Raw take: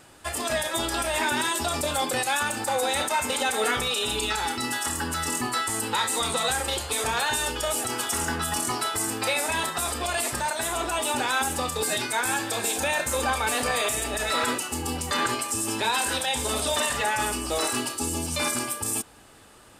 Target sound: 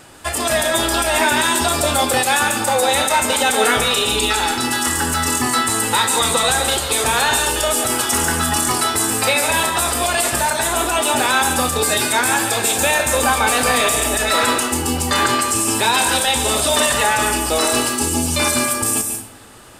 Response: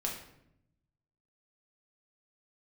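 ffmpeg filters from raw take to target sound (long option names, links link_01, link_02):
-filter_complex "[0:a]asplit=2[link_01][link_02];[1:a]atrim=start_sample=2205,highshelf=frequency=7600:gain=10,adelay=142[link_03];[link_02][link_03]afir=irnorm=-1:irlink=0,volume=-11dB[link_04];[link_01][link_04]amix=inputs=2:normalize=0,volume=8.5dB"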